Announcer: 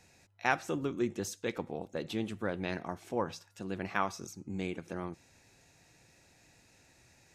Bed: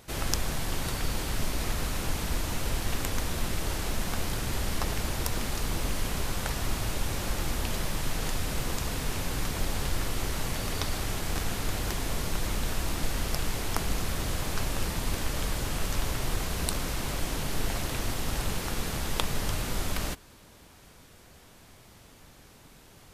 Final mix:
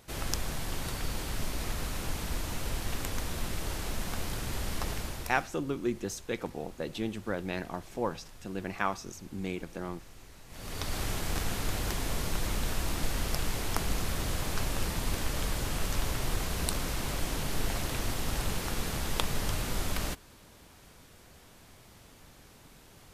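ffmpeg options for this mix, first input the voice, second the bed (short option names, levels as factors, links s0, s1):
-filter_complex "[0:a]adelay=4850,volume=1.12[s0];[1:a]volume=6.31,afade=t=out:st=4.91:d=0.62:silence=0.133352,afade=t=in:st=10.48:d=0.53:silence=0.1[s1];[s0][s1]amix=inputs=2:normalize=0"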